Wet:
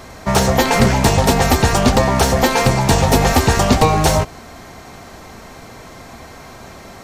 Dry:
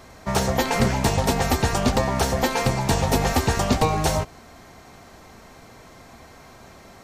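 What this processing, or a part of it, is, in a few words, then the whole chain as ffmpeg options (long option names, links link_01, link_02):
parallel distortion: -filter_complex "[0:a]asplit=2[link_01][link_02];[link_02]asoftclip=type=hard:threshold=-24.5dB,volume=-7dB[link_03];[link_01][link_03]amix=inputs=2:normalize=0,volume=6dB"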